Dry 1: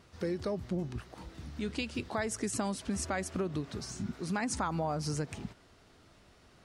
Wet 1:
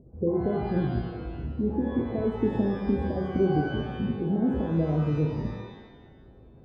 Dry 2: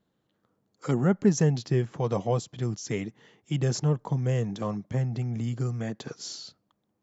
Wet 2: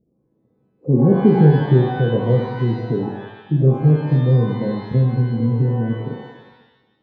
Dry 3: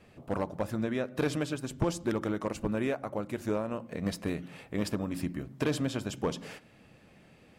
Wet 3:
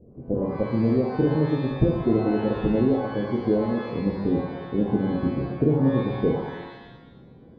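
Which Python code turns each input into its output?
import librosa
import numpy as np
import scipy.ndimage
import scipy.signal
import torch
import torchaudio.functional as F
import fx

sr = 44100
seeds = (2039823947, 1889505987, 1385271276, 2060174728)

y = scipy.signal.sosfilt(scipy.signal.cheby2(4, 50, 1300.0, 'lowpass', fs=sr, output='sos'), x)
y = fx.rev_shimmer(y, sr, seeds[0], rt60_s=1.0, semitones=12, shimmer_db=-8, drr_db=2.0)
y = y * librosa.db_to_amplitude(8.5)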